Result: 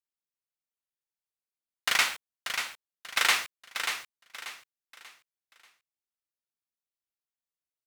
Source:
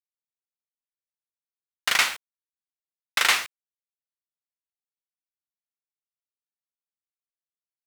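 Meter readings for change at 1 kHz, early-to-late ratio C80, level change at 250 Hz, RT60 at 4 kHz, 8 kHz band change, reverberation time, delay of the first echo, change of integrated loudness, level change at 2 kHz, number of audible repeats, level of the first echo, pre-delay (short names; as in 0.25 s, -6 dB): -2.5 dB, none, -2.5 dB, none, -2.5 dB, none, 0.587 s, -5.5 dB, -2.5 dB, 3, -7.5 dB, none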